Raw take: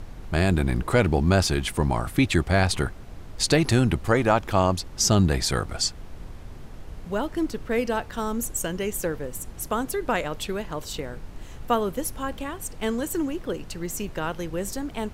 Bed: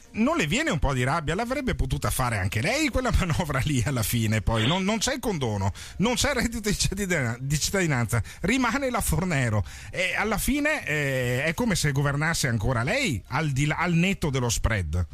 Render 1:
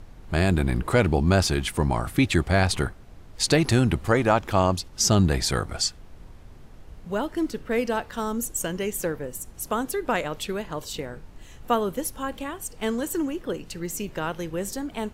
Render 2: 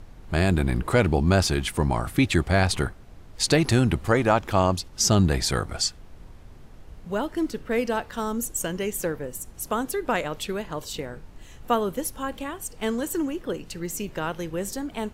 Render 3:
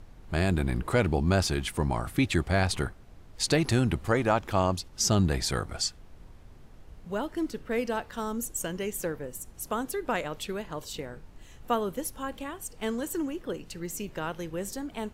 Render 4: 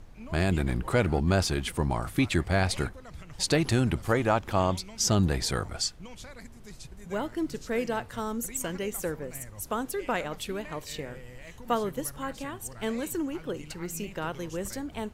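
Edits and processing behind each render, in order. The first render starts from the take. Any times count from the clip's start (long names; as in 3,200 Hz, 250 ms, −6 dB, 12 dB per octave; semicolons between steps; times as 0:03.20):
noise reduction from a noise print 6 dB
no processing that can be heard
level −4.5 dB
mix in bed −22.5 dB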